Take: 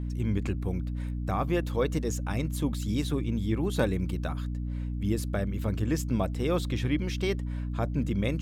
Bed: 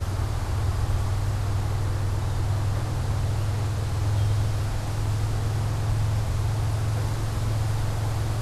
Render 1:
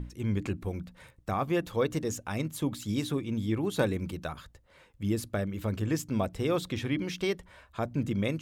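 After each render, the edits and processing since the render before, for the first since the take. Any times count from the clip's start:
mains-hum notches 60/120/180/240/300 Hz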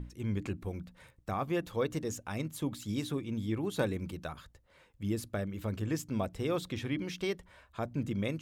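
level −4 dB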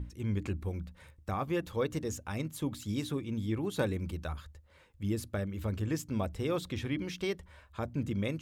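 parametric band 76 Hz +14.5 dB 0.31 octaves
notch filter 690 Hz, Q 16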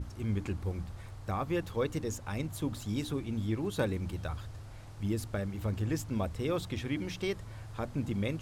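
mix in bed −20.5 dB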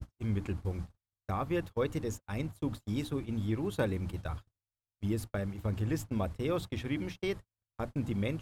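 noise gate −37 dBFS, range −54 dB
dynamic equaliser 6,000 Hz, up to −4 dB, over −59 dBFS, Q 0.99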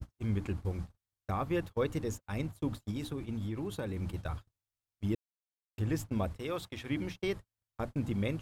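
0:02.90–0:03.97: downward compressor, threshold −32 dBFS
0:05.15–0:05.78: silence
0:06.38–0:06.90: low-shelf EQ 430 Hz −9.5 dB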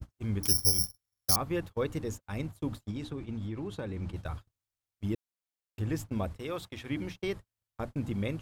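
0:00.43–0:01.36: bad sample-rate conversion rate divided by 8×, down filtered, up zero stuff
0:02.87–0:04.16: high-frequency loss of the air 55 metres

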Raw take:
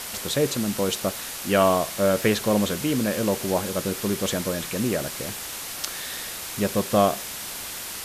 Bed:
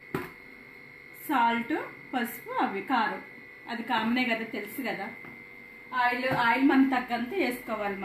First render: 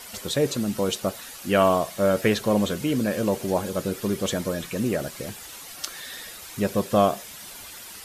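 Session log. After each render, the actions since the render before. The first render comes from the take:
broadband denoise 10 dB, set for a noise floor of −35 dBFS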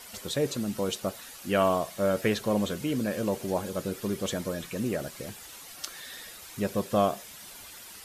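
level −5 dB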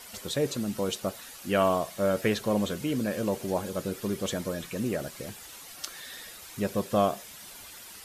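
no processing that can be heard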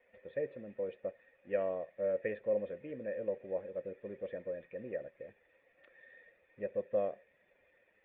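dead-zone distortion −50.5 dBFS
formant resonators in series e

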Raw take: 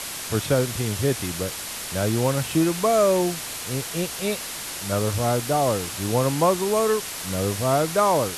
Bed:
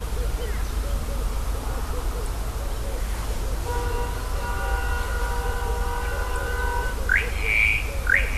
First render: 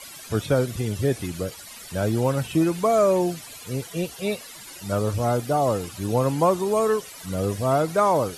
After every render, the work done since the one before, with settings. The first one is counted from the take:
broadband denoise 15 dB, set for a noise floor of −33 dBFS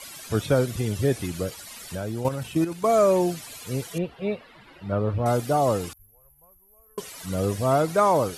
0:01.95–0:02.89: output level in coarse steps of 10 dB
0:03.98–0:05.26: high-frequency loss of the air 440 metres
0:05.93–0:06.98: inverse Chebyshev band-stop filter 110–8,600 Hz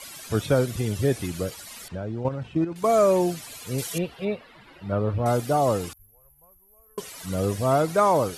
0:01.88–0:02.76: head-to-tape spacing loss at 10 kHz 28 dB
0:03.78–0:04.25: high-shelf EQ 2,600 Hz +9 dB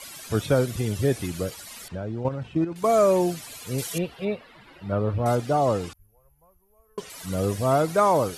0:05.35–0:07.10: high-frequency loss of the air 55 metres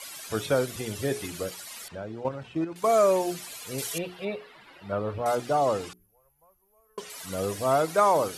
low-shelf EQ 240 Hz −12 dB
mains-hum notches 60/120/180/240/300/360/420 Hz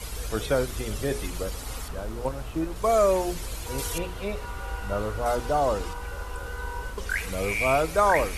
mix in bed −8.5 dB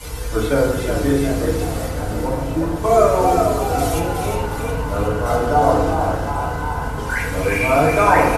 echo with shifted repeats 364 ms, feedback 57%, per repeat +55 Hz, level −5.5 dB
feedback delay network reverb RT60 1 s, low-frequency decay 1.3×, high-frequency decay 0.3×, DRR −6 dB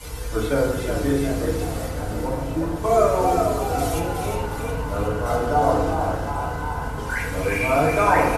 level −4 dB

